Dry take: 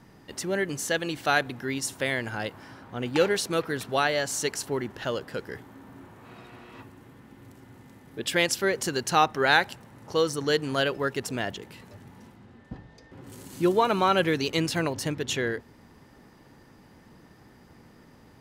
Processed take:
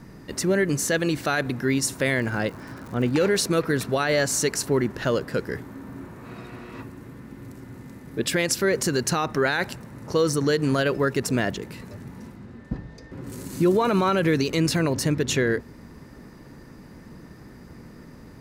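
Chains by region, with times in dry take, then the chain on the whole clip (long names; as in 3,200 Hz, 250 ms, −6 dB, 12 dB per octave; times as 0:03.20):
0:02.17–0:03.11: high-shelf EQ 4,700 Hz −7 dB + surface crackle 190 per second −41 dBFS
whole clip: low-shelf EQ 280 Hz +6.5 dB; brickwall limiter −18 dBFS; thirty-one-band graphic EQ 100 Hz −6 dB, 800 Hz −6 dB, 3,150 Hz −7 dB; level +6 dB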